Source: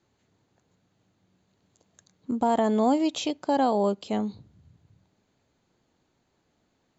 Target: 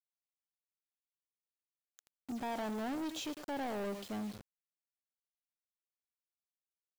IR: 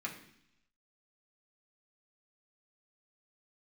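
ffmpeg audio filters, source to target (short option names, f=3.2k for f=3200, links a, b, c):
-af "aecho=1:1:105:0.158,acrusher=bits=6:mix=0:aa=0.000001,asoftclip=type=tanh:threshold=-29dB,volume=-7dB"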